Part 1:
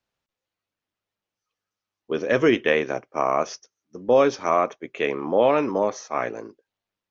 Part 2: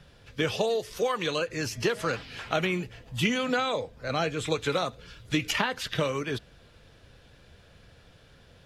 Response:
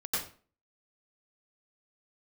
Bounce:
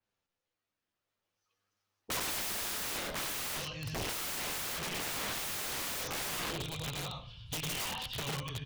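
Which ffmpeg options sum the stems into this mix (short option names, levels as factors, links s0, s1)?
-filter_complex "[0:a]flanger=delay=9.4:depth=5.1:regen=37:speed=0.58:shape=triangular,aeval=exprs='(mod(20*val(0)+1,2)-1)/20':c=same,volume=0.841,asplit=2[s0][s1];[s1]volume=0.251[s2];[1:a]firequalizer=gain_entry='entry(110,0);entry(190,-13);entry(390,-25);entry(960,-7);entry(1500,-24);entry(3000,-1);entry(6900,-18)':delay=0.05:min_phase=1,adelay=2200,volume=0.335,asplit=2[s3][s4];[s4]volume=0.631[s5];[2:a]atrim=start_sample=2205[s6];[s2][s5]amix=inputs=2:normalize=0[s7];[s7][s6]afir=irnorm=-1:irlink=0[s8];[s0][s3][s8]amix=inputs=3:normalize=0,dynaudnorm=f=220:g=11:m=2.24,aeval=exprs='(mod(31.6*val(0)+1,2)-1)/31.6':c=same,adynamicequalizer=threshold=0.00355:dfrequency=3800:dqfactor=0.7:tfrequency=3800:tqfactor=0.7:attack=5:release=100:ratio=0.375:range=2:mode=cutabove:tftype=highshelf"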